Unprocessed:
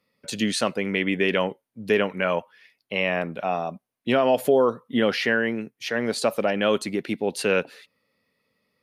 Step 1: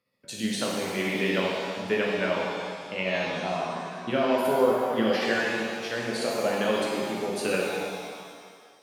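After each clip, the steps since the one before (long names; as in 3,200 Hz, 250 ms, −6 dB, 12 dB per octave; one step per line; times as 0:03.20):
amplitude tremolo 13 Hz, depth 54%
reverb with rising layers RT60 1.9 s, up +7 semitones, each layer −8 dB, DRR −3.5 dB
level −6 dB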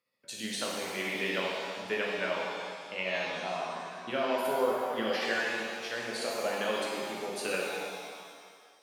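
low-shelf EQ 330 Hz −11.5 dB
level −3 dB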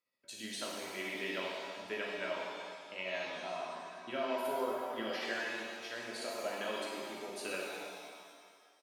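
comb filter 3.1 ms, depth 38%
level −7 dB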